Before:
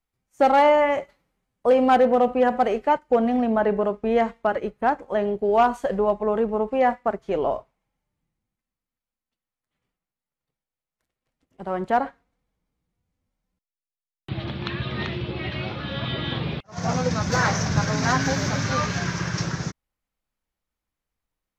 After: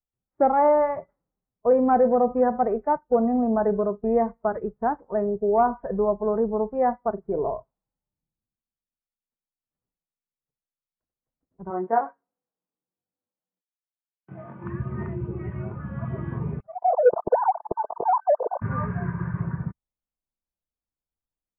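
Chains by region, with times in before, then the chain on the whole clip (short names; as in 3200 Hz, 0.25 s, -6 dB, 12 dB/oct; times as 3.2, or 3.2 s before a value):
7.12–7.53 high shelf 2200 Hz -9.5 dB + doubler 40 ms -12 dB
11.7–14.64 switching dead time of 0.06 ms + HPF 310 Hz + doubler 22 ms -2.5 dB
16.67–18.62 sine-wave speech + inverse Chebyshev low-pass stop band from 2800 Hz, stop band 60 dB + sample leveller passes 2
whole clip: spectral noise reduction 10 dB; Bessel low-pass 960 Hz, order 8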